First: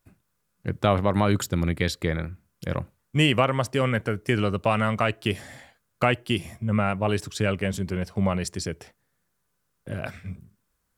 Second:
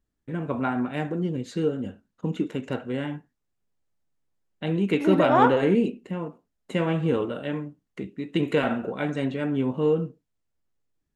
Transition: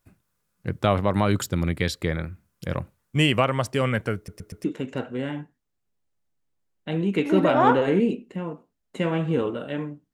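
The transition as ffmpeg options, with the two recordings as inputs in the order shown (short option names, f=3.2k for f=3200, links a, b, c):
-filter_complex "[0:a]apad=whole_dur=10.13,atrim=end=10.13,asplit=4[a][b][c][d];[a]atrim=end=4.282[e];[b]atrim=start=4.158:end=4.282[f];[c]atrim=start=4.158:end=4.282[g];[d]atrim=start=4.158:end=4.282[h];[1:a]atrim=start=2.388:end=7.88[i];[e][f]acrossfade=d=0.004:c1=hsin:c2=hsin[j];[j][g]acrossfade=d=0.004:c1=hsin:c2=hsin[k];[k][h]acrossfade=d=0.004:c1=hsin:c2=hsin[l];[l][i]acrossfade=d=0.004:c1=hsin:c2=hsin"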